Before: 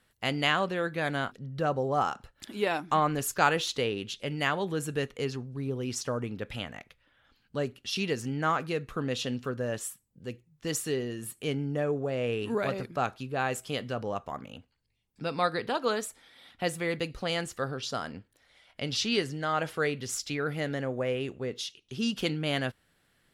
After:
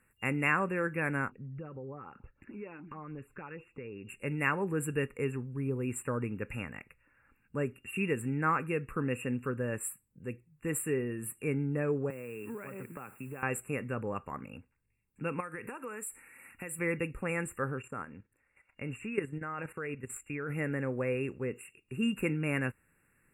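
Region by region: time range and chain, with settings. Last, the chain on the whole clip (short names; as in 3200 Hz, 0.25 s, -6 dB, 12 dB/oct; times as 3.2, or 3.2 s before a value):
1.29–4.09 compressor 3:1, threshold -40 dBFS + LFO notch sine 6.6 Hz 720–1900 Hz + air absorption 330 m
12.1–13.43 HPF 120 Hz 24 dB/oct + compressor 10:1, threshold -36 dBFS + requantised 10-bit, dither triangular
15.4–16.79 high shelf 2600 Hz +12 dB + compressor 5:1, threshold -36 dBFS
17.82–20.5 level quantiser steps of 12 dB + high shelf 9300 Hz -9 dB
whole clip: FFT band-reject 2800–7200 Hz; bell 680 Hz -14 dB 0.36 oct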